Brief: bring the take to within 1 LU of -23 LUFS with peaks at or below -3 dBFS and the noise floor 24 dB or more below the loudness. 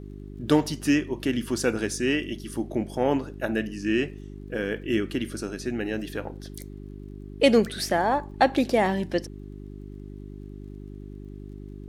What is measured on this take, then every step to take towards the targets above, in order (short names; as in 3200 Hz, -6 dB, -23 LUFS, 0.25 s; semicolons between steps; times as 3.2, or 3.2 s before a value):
ticks 29/s; hum 50 Hz; harmonics up to 400 Hz; hum level -38 dBFS; loudness -26.0 LUFS; peak -5.0 dBFS; loudness target -23.0 LUFS
-> de-click; de-hum 50 Hz, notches 8; gain +3 dB; limiter -3 dBFS